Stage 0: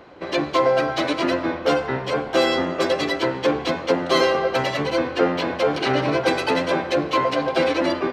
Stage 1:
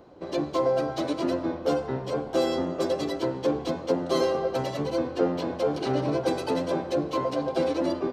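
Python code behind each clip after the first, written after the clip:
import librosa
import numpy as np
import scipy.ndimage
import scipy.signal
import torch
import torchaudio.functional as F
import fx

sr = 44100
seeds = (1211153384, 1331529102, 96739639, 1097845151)

y = fx.peak_eq(x, sr, hz=2100.0, db=-14.0, octaves=1.9)
y = y * librosa.db_to_amplitude(-3.0)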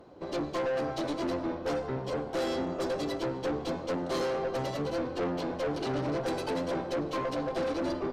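y = fx.tube_stage(x, sr, drive_db=27.0, bias=0.4)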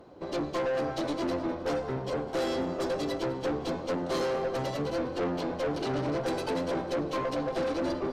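y = fx.echo_feedback(x, sr, ms=204, feedback_pct=43, wet_db=-18)
y = y * librosa.db_to_amplitude(1.0)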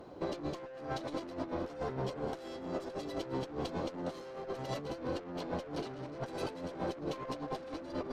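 y = fx.over_compress(x, sr, threshold_db=-35.0, ratio=-0.5)
y = y * librosa.db_to_amplitude(-3.5)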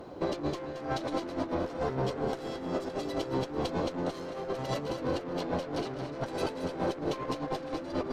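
y = fx.echo_feedback(x, sr, ms=224, feedback_pct=42, wet_db=-10.0)
y = y * librosa.db_to_amplitude(5.5)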